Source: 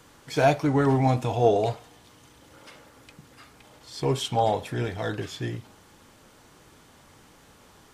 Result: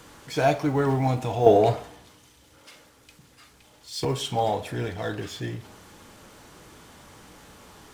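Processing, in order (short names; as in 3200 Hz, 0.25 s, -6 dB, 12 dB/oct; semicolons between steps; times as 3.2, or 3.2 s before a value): G.711 law mismatch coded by mu; reverb RT60 0.65 s, pre-delay 8 ms, DRR 10.5 dB; 1.46–4.05 three-band expander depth 70%; gain -2 dB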